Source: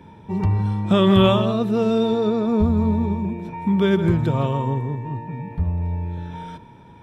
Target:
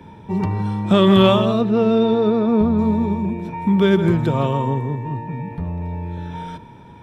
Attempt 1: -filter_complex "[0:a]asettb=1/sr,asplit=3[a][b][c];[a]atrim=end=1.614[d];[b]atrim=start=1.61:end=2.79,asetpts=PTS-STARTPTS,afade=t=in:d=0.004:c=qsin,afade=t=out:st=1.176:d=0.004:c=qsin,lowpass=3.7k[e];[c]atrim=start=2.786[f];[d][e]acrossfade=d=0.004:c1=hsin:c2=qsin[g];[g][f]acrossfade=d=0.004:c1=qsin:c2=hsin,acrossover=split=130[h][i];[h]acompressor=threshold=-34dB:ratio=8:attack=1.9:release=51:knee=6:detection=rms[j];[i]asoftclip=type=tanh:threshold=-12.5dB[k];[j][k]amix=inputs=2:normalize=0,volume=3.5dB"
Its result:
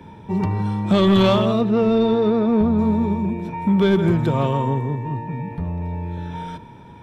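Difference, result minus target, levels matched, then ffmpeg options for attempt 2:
soft clip: distortion +15 dB
-filter_complex "[0:a]asettb=1/sr,asplit=3[a][b][c];[a]atrim=end=1.614[d];[b]atrim=start=1.61:end=2.79,asetpts=PTS-STARTPTS,afade=t=in:d=0.004:c=qsin,afade=t=out:st=1.176:d=0.004:c=qsin,lowpass=3.7k[e];[c]atrim=start=2.786[f];[d][e]acrossfade=d=0.004:c1=hsin:c2=qsin[g];[g][f]acrossfade=d=0.004:c1=qsin:c2=hsin,acrossover=split=130[h][i];[h]acompressor=threshold=-34dB:ratio=8:attack=1.9:release=51:knee=6:detection=rms[j];[i]asoftclip=type=tanh:threshold=-2.5dB[k];[j][k]amix=inputs=2:normalize=0,volume=3.5dB"

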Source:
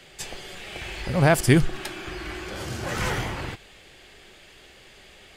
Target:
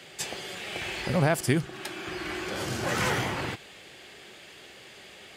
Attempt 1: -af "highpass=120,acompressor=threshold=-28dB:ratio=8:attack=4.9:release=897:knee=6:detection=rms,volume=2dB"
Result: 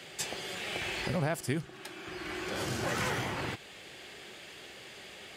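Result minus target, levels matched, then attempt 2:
compressor: peak gain reduction +8 dB
-af "highpass=120,acompressor=threshold=-19dB:ratio=8:attack=4.9:release=897:knee=6:detection=rms,volume=2dB"

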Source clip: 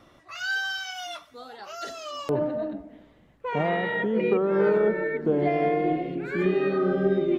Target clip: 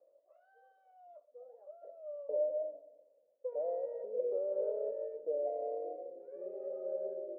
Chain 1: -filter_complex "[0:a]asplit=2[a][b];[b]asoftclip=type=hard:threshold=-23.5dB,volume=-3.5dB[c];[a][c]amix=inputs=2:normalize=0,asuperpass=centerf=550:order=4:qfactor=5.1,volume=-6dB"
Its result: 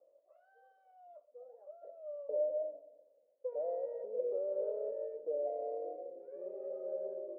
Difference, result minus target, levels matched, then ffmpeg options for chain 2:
hard clip: distortion +17 dB
-filter_complex "[0:a]asplit=2[a][b];[b]asoftclip=type=hard:threshold=-15.5dB,volume=-3.5dB[c];[a][c]amix=inputs=2:normalize=0,asuperpass=centerf=550:order=4:qfactor=5.1,volume=-6dB"

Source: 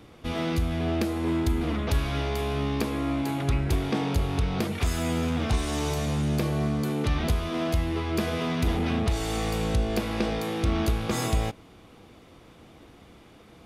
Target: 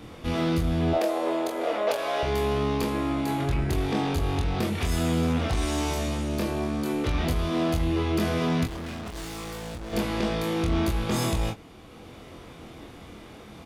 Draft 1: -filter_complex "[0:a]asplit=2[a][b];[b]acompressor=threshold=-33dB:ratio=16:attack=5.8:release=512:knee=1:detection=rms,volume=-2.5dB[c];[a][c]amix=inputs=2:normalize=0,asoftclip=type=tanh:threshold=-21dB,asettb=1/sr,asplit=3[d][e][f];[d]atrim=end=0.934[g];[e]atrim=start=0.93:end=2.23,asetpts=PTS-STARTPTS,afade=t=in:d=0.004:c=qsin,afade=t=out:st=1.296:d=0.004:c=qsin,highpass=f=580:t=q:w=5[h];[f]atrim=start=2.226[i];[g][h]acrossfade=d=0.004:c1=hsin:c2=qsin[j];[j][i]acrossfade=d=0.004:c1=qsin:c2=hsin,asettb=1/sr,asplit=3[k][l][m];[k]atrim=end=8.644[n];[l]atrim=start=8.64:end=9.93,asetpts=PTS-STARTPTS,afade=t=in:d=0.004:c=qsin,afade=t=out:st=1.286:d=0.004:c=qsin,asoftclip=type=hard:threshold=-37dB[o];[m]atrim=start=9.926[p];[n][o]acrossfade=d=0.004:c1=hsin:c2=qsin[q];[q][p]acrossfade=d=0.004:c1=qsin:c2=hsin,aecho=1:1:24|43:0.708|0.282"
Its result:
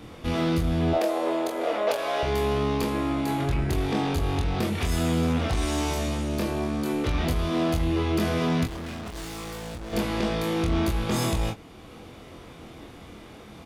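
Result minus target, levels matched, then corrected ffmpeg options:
compressor: peak gain reduction -7 dB
-filter_complex "[0:a]asplit=2[a][b];[b]acompressor=threshold=-40.5dB:ratio=16:attack=5.8:release=512:knee=1:detection=rms,volume=-2.5dB[c];[a][c]amix=inputs=2:normalize=0,asoftclip=type=tanh:threshold=-21dB,asettb=1/sr,asplit=3[d][e][f];[d]atrim=end=0.934[g];[e]atrim=start=0.93:end=2.23,asetpts=PTS-STARTPTS,afade=t=in:d=0.004:c=qsin,afade=t=out:st=1.296:d=0.004:c=qsin,highpass=f=580:t=q:w=5[h];[f]atrim=start=2.226[i];[g][h]acrossfade=d=0.004:c1=hsin:c2=qsin[j];[j][i]acrossfade=d=0.004:c1=qsin:c2=hsin,asettb=1/sr,asplit=3[k][l][m];[k]atrim=end=8.644[n];[l]atrim=start=8.64:end=9.93,asetpts=PTS-STARTPTS,afade=t=in:d=0.004:c=qsin,afade=t=out:st=1.286:d=0.004:c=qsin,asoftclip=type=hard:threshold=-37dB[o];[m]atrim=start=9.926[p];[n][o]acrossfade=d=0.004:c1=hsin:c2=qsin[q];[q][p]acrossfade=d=0.004:c1=qsin:c2=hsin,aecho=1:1:24|43:0.708|0.282"

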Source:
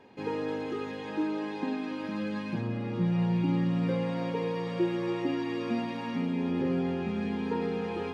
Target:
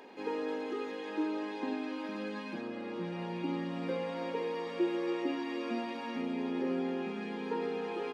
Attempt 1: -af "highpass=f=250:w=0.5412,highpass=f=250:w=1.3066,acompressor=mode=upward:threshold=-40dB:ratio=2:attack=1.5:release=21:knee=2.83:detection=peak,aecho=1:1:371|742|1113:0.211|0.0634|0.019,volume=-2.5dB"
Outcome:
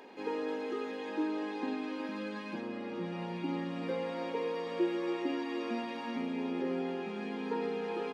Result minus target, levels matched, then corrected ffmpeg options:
echo 0.155 s early
-af "highpass=f=250:w=0.5412,highpass=f=250:w=1.3066,acompressor=mode=upward:threshold=-40dB:ratio=2:attack=1.5:release=21:knee=2.83:detection=peak,aecho=1:1:526|1052|1578:0.211|0.0634|0.019,volume=-2.5dB"

